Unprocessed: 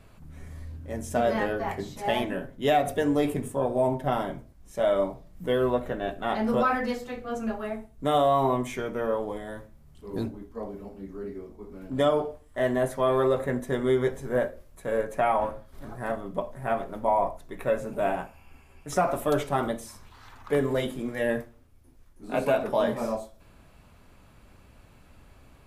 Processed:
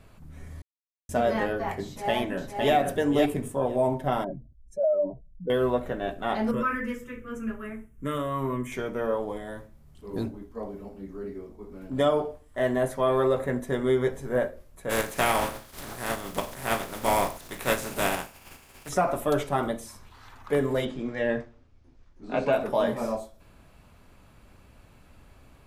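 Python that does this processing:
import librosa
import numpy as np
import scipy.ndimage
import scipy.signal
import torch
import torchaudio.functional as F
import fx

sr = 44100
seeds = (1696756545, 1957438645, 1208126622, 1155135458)

y = fx.echo_throw(x, sr, start_s=1.86, length_s=0.88, ms=510, feedback_pct=10, wet_db=-3.5)
y = fx.spec_expand(y, sr, power=2.3, at=(4.24, 5.5))
y = fx.fixed_phaser(y, sr, hz=1800.0, stages=4, at=(6.51, 8.72))
y = fx.spec_flatten(y, sr, power=0.47, at=(14.89, 18.88), fade=0.02)
y = fx.lowpass(y, sr, hz=6100.0, slope=24, at=(20.85, 22.53))
y = fx.edit(y, sr, fx.silence(start_s=0.62, length_s=0.47), tone=tone)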